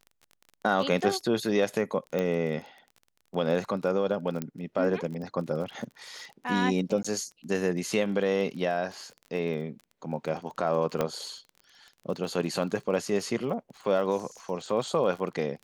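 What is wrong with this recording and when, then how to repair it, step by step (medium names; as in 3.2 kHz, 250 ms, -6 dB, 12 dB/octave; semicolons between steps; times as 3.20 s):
crackle 28 per s -37 dBFS
2.19 s: pop -17 dBFS
4.42 s: pop -17 dBFS
7.03–7.04 s: dropout 15 ms
11.01 s: pop -13 dBFS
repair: de-click; interpolate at 7.03 s, 15 ms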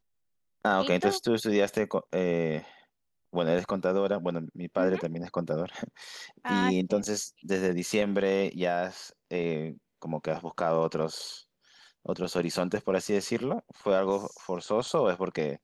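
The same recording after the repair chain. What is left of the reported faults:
2.19 s: pop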